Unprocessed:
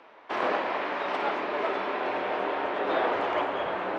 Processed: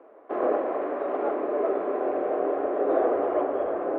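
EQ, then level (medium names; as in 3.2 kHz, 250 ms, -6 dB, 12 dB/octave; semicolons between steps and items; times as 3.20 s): resonant low-pass 930 Hz, resonance Q 4.9; peaking EQ 330 Hz +5.5 dB 3 oct; static phaser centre 380 Hz, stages 4; 0.0 dB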